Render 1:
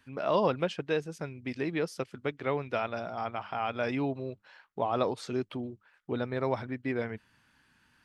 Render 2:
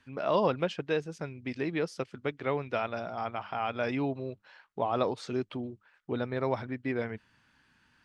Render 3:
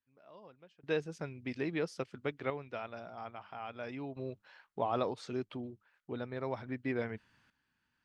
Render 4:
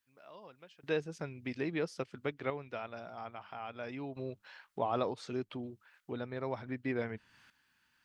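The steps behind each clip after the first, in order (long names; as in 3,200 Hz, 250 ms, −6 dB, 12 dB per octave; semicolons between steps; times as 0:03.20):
low-pass filter 7,700 Hz 12 dB per octave
sample-and-hold tremolo 1.2 Hz, depth 95%; level −3 dB
one half of a high-frequency compander encoder only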